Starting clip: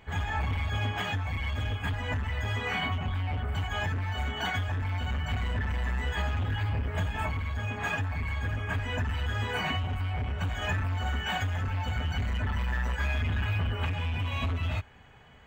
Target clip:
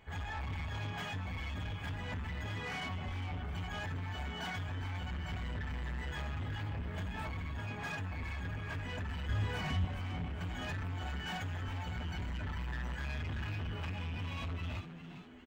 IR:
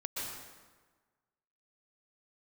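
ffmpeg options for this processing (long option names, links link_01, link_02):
-filter_complex "[0:a]asoftclip=type=tanh:threshold=-29.5dB,asettb=1/sr,asplit=3[link_01][link_02][link_03];[link_01]atrim=end=9.294[link_04];[link_02]atrim=start=9.29:end=9.85,asetpts=PTS-STARTPTS,afade=type=in:duration=0.004:curve=qsin,afade=type=out:start_time=0.556:duration=0.004:curve=qsin,lowshelf=frequency=150:gain=11.5[link_05];[link_03]atrim=start=9.846[link_06];[link_04][link_05]acrossfade=duration=0.004:curve1=hsin:curve2=qsin[link_07];[link_07][link_06]acrossfade=duration=0.004:curve1=qsin:curve2=hsin,asplit=5[link_08][link_09][link_10][link_11][link_12];[link_09]adelay=405,afreqshift=82,volume=-11dB[link_13];[link_10]adelay=810,afreqshift=164,volume=-18.5dB[link_14];[link_11]adelay=1215,afreqshift=246,volume=-26.1dB[link_15];[link_12]adelay=1620,afreqshift=328,volume=-33.6dB[link_16];[link_08][link_13][link_14][link_15][link_16]amix=inputs=5:normalize=0,volume=-6dB"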